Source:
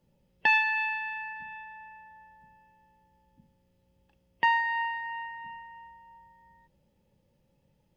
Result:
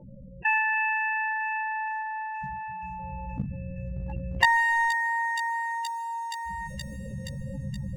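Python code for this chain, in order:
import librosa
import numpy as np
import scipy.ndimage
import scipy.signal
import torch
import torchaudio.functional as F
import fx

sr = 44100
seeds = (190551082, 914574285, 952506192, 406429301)

y = fx.recorder_agc(x, sr, target_db=-17.0, rise_db_per_s=6.8, max_gain_db=30)
y = fx.dynamic_eq(y, sr, hz=100.0, q=0.84, threshold_db=-58.0, ratio=4.0, max_db=6)
y = fx.spec_gate(y, sr, threshold_db=-10, keep='strong')
y = fx.leveller(y, sr, passes=1, at=(2.01, 4.91))
y = 10.0 ** (-2.0 / 20.0) * np.tanh(y / 10.0 ** (-2.0 / 20.0))
y = fx.peak_eq(y, sr, hz=950.0, db=-3.0, octaves=0.77)
y = fx.doubler(y, sr, ms=15.0, db=-3.0)
y = fx.echo_wet_highpass(y, sr, ms=473, feedback_pct=72, hz=5500.0, wet_db=-10.5)
y = fx.env_flatten(y, sr, amount_pct=50)
y = y * 10.0 ** (-7.5 / 20.0)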